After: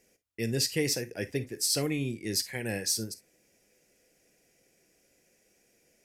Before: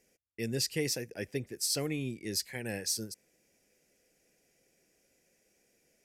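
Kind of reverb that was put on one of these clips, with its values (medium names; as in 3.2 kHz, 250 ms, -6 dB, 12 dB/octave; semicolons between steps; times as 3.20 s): gated-style reverb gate 80 ms flat, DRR 11 dB; trim +3.5 dB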